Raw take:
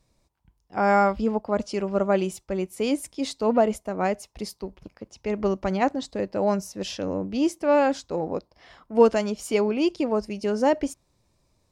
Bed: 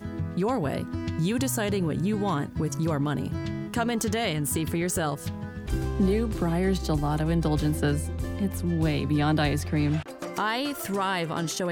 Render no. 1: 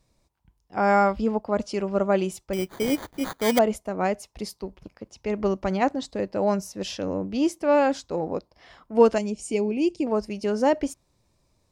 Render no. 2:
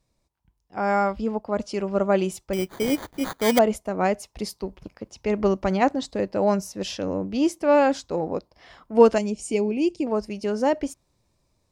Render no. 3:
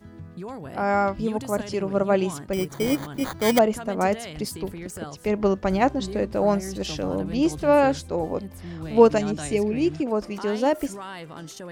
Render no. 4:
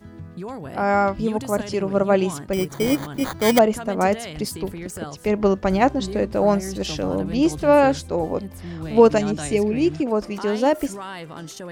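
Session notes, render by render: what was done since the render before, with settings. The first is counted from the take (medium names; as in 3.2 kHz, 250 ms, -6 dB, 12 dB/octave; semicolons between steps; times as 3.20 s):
2.53–3.59 s: sample-rate reducer 2.7 kHz; 9.18–10.07 s: FFT filter 350 Hz 0 dB, 570 Hz -7 dB, 810 Hz -7 dB, 1.4 kHz -21 dB, 2.5 kHz -2 dB, 3.5 kHz -10 dB, 8.8 kHz +3 dB, 13 kHz -20 dB
gain riding within 5 dB 2 s
add bed -10 dB
trim +3 dB; peak limiter -3 dBFS, peak gain reduction 2.5 dB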